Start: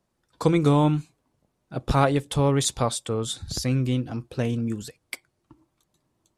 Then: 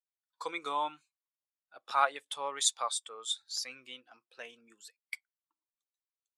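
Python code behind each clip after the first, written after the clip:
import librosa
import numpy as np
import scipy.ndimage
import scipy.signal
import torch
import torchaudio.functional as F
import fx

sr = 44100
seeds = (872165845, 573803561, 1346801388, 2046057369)

y = scipy.signal.sosfilt(scipy.signal.butter(2, 1200.0, 'highpass', fs=sr, output='sos'), x)
y = fx.spectral_expand(y, sr, expansion=1.5)
y = F.gain(torch.from_numpy(y), -2.0).numpy()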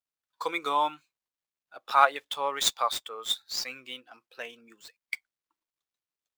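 y = scipy.signal.medfilt(x, 5)
y = F.gain(torch.from_numpy(y), 7.0).numpy()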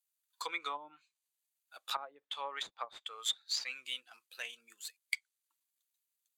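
y = fx.env_lowpass_down(x, sr, base_hz=340.0, full_db=-21.5)
y = scipy.signal.lfilter([1.0, -0.97], [1.0], y)
y = fx.notch(y, sr, hz=5400.0, q=5.8)
y = F.gain(torch.from_numpy(y), 8.5).numpy()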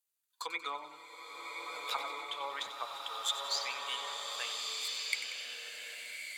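y = fx.echo_feedback(x, sr, ms=93, feedback_pct=57, wet_db=-12)
y = fx.rev_bloom(y, sr, seeds[0], attack_ms=1510, drr_db=-1.0)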